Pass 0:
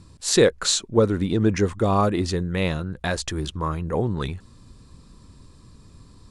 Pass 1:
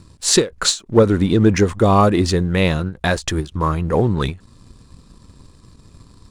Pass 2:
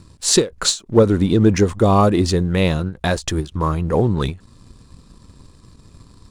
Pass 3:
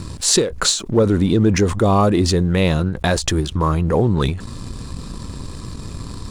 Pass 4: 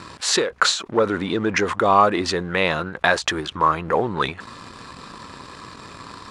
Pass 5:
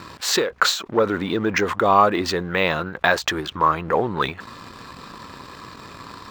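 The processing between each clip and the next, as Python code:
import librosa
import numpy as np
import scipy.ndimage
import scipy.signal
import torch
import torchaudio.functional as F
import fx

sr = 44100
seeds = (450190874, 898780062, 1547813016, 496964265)

y1 = fx.leveller(x, sr, passes=1)
y1 = fx.end_taper(y1, sr, db_per_s=240.0)
y1 = F.gain(torch.from_numpy(y1), 3.5).numpy()
y2 = fx.dynamic_eq(y1, sr, hz=1800.0, q=0.99, threshold_db=-34.0, ratio=4.0, max_db=-4)
y3 = fx.env_flatten(y2, sr, amount_pct=50)
y3 = F.gain(torch.from_numpy(y3), -3.5).numpy()
y4 = fx.bandpass_q(y3, sr, hz=1500.0, q=0.96)
y4 = F.gain(torch.from_numpy(y4), 6.5).numpy()
y5 = np.interp(np.arange(len(y4)), np.arange(len(y4))[::2], y4[::2])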